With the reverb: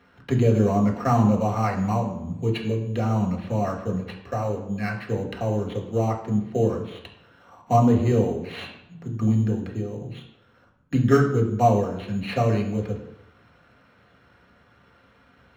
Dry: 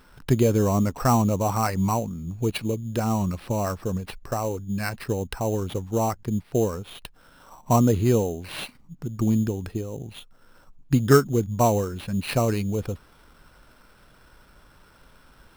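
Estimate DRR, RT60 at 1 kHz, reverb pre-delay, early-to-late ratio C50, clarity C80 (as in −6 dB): 0.0 dB, 0.85 s, 3 ms, 7.5 dB, 10.5 dB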